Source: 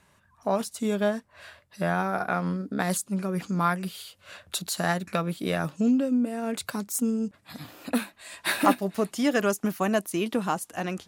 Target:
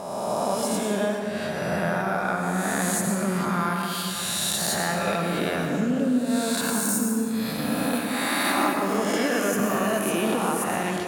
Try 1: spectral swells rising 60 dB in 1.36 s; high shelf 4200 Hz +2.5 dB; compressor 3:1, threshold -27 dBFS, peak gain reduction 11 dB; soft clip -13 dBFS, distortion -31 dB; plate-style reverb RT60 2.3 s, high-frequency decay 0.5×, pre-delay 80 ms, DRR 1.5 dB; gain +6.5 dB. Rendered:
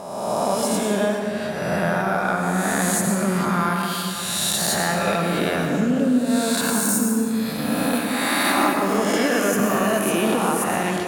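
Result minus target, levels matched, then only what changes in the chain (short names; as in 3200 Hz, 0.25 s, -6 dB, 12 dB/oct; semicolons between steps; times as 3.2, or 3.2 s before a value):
compressor: peak gain reduction -4 dB
change: compressor 3:1, threshold -33 dBFS, peak gain reduction 15 dB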